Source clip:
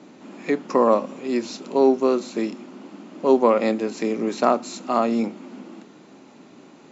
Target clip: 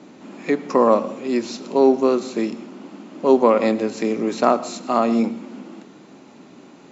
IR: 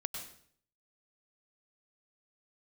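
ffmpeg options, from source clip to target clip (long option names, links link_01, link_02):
-filter_complex "[0:a]asplit=2[link_01][link_02];[1:a]atrim=start_sample=2205,lowshelf=frequency=170:gain=9[link_03];[link_02][link_03]afir=irnorm=-1:irlink=0,volume=-11dB[link_04];[link_01][link_04]amix=inputs=2:normalize=0"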